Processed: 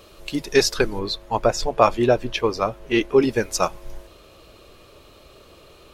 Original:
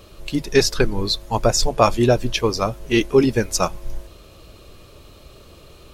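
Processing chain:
bass and treble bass −8 dB, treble −1 dB, from 0:00.98 treble −11 dB, from 0:03.22 treble −4 dB

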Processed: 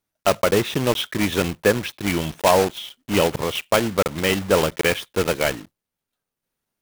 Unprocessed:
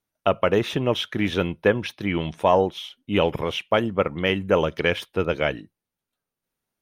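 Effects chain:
one scale factor per block 3 bits
level +1.5 dB

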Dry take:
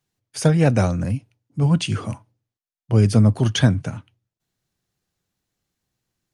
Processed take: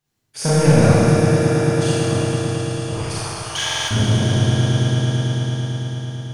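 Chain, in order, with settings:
0:00.90–0:02.04: first difference
echo that builds up and dies away 111 ms, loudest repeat 5, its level −12.5 dB
soft clipping −12 dBFS, distortion −13 dB
0:02.93–0:03.91: high-pass filter 850 Hz 24 dB per octave
four-comb reverb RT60 2.8 s, combs from 27 ms, DRR −10 dB
buffer that repeats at 0:03.65, samples 2,048, times 4
level −2.5 dB

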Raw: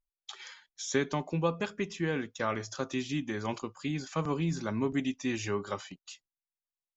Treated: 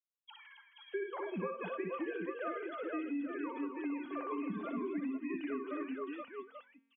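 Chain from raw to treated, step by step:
three sine waves on the formant tracks
on a send: multi-tap delay 60/133/269/477/838 ms −4.5/−19.5/−8.5/−5/−9.5 dB
on the sum: downward compressor 6 to 1, threshold −31 dBFS, peak gain reduction 11.5 dB
tuned comb filter 230 Hz, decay 1.2 s, mix 60%
hum removal 272.7 Hz, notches 3
level +4 dB

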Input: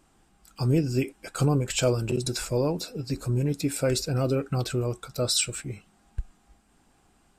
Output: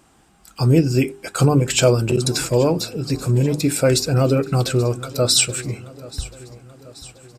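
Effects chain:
high-pass filter 49 Hz
mains-hum notches 50/100/150/200/250/300/350/400 Hz
repeating echo 832 ms, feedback 55%, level −19.5 dB
level +9 dB

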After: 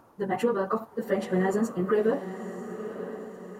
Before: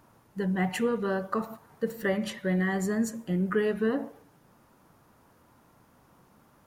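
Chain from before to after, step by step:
flat-topped bell 580 Hz +8 dB 2.7 octaves
time stretch by phase vocoder 0.54×
feedback delay with all-pass diffusion 972 ms, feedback 50%, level −11 dB

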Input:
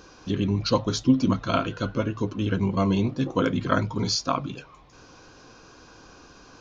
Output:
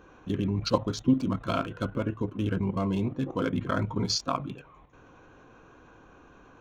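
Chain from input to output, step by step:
adaptive Wiener filter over 9 samples
output level in coarse steps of 9 dB

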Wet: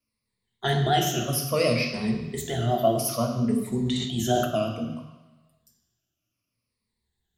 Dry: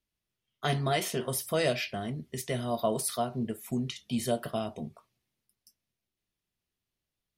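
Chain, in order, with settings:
rippled gain that drifts along the octave scale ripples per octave 0.93, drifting −0.61 Hz, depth 16 dB
pitch vibrato 5.6 Hz 86 cents
on a send at −3.5 dB: convolution reverb RT60 1.1 s, pre-delay 3 ms
0:03.72–0:04.45: on the sum: level that may fall only so fast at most 44 dB per second

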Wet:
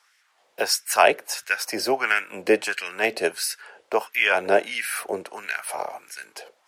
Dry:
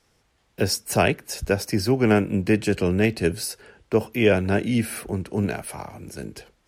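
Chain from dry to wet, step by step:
auto-filter high-pass sine 1.5 Hz 520–1,800 Hz
level +2.5 dB

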